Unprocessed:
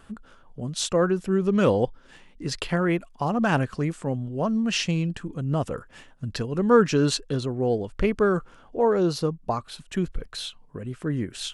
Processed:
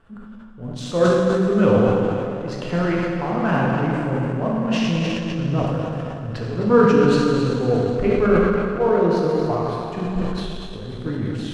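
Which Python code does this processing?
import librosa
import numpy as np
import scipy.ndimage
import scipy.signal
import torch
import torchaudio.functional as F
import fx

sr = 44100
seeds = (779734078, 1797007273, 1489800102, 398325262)

p1 = fx.high_shelf(x, sr, hz=3800.0, db=-11.0)
p2 = p1 + fx.echo_split(p1, sr, split_hz=300.0, low_ms=124, high_ms=257, feedback_pct=52, wet_db=-11.5, dry=0)
p3 = fx.rev_plate(p2, sr, seeds[0], rt60_s=2.8, hf_ratio=0.95, predelay_ms=0, drr_db=-4.5)
p4 = np.sign(p3) * np.maximum(np.abs(p3) - 10.0 ** (-28.0 / 20.0), 0.0)
p5 = p3 + (p4 * 10.0 ** (-4.5 / 20.0))
p6 = fx.high_shelf(p5, sr, hz=7600.0, db=-10.0)
p7 = fx.sustainer(p6, sr, db_per_s=27.0)
y = p7 * 10.0 ** (-5.0 / 20.0)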